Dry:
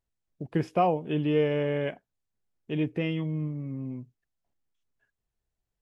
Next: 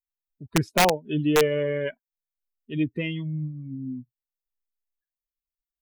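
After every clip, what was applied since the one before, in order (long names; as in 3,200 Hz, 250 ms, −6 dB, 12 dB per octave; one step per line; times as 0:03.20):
spectral dynamics exaggerated over time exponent 2
wrap-around overflow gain 18 dB
level +6.5 dB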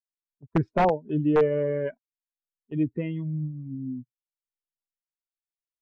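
noise gate −38 dBFS, range −18 dB
low-pass filter 1,200 Hz 12 dB per octave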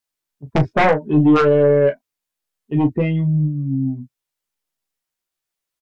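sine wavefolder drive 7 dB, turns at −11.5 dBFS
on a send: ambience of single reflections 14 ms −4.5 dB, 37 ms −10 dB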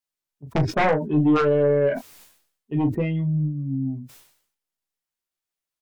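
level that may fall only so fast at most 89 dB per second
level −5.5 dB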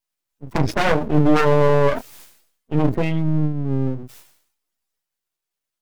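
spectral magnitudes quantised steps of 15 dB
half-wave rectification
level +8 dB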